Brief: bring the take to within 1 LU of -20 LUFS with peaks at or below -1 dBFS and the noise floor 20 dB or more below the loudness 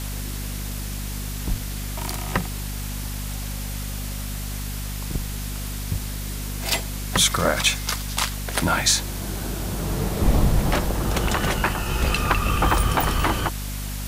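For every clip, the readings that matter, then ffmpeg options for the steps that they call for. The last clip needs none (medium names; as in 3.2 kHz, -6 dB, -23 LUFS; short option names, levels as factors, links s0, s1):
hum 50 Hz; highest harmonic 250 Hz; hum level -28 dBFS; noise floor -30 dBFS; noise floor target -45 dBFS; loudness -24.5 LUFS; peak level -5.0 dBFS; loudness target -20.0 LUFS
-> -af "bandreject=f=50:t=h:w=6,bandreject=f=100:t=h:w=6,bandreject=f=150:t=h:w=6,bandreject=f=200:t=h:w=6,bandreject=f=250:t=h:w=6"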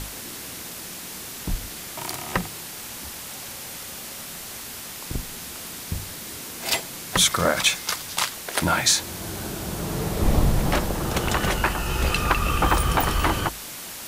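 hum not found; noise floor -37 dBFS; noise floor target -46 dBFS
-> -af "afftdn=nr=9:nf=-37"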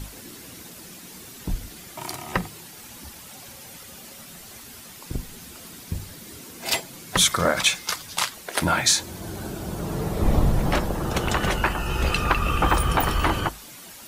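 noise floor -43 dBFS; noise floor target -45 dBFS
-> -af "afftdn=nr=6:nf=-43"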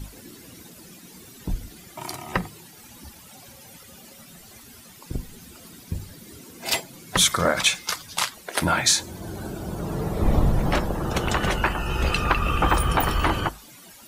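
noise floor -47 dBFS; loudness -24.0 LUFS; peak level -5.5 dBFS; loudness target -20.0 LUFS
-> -af "volume=1.58"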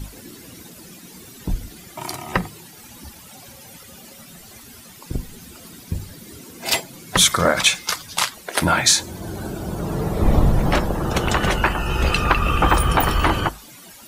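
loudness -20.0 LUFS; peak level -1.5 dBFS; noise floor -43 dBFS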